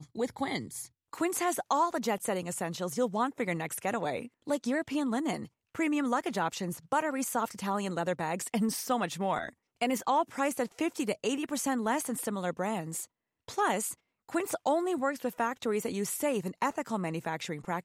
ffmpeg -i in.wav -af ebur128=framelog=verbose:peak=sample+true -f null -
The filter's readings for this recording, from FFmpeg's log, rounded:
Integrated loudness:
  I:         -32.1 LUFS
  Threshold: -42.2 LUFS
Loudness range:
  LRA:         1.3 LU
  Threshold: -52.1 LUFS
  LRA low:   -32.8 LUFS
  LRA high:  -31.5 LUFS
Sample peak:
  Peak:      -16.7 dBFS
True peak:
  Peak:      -16.7 dBFS